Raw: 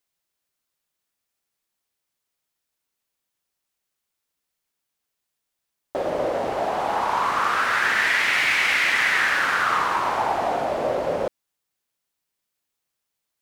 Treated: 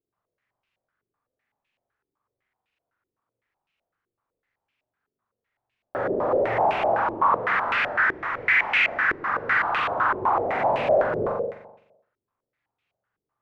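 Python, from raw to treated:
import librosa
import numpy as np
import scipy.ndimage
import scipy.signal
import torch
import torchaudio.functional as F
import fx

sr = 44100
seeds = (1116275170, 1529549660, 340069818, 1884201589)

p1 = fx.peak_eq(x, sr, hz=110.0, db=12.0, octaves=0.34)
p2 = fx.over_compress(p1, sr, threshold_db=-26.0, ratio=-1.0)
p3 = p1 + (p2 * 10.0 ** (1.0 / 20.0))
p4 = fx.mod_noise(p3, sr, seeds[0], snr_db=15)
p5 = p4 + fx.room_flutter(p4, sr, wall_m=7.3, rt60_s=0.89, dry=0)
p6 = 10.0 ** (-13.5 / 20.0) * np.tanh(p5 / 10.0 ** (-13.5 / 20.0))
p7 = fx.filter_held_lowpass(p6, sr, hz=7.9, low_hz=380.0, high_hz=2600.0)
y = p7 * 10.0 ** (-9.0 / 20.0)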